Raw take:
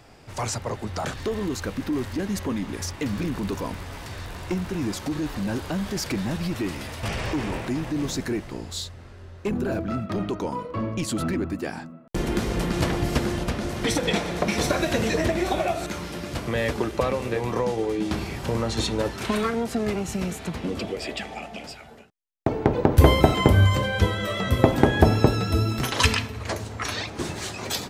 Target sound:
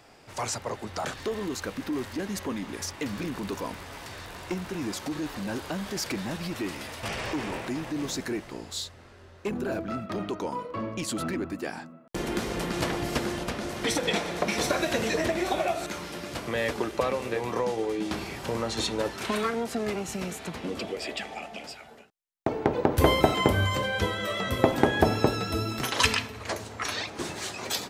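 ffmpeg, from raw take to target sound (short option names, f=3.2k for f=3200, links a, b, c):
-af "lowshelf=f=170:g=-11.5,volume=-1.5dB"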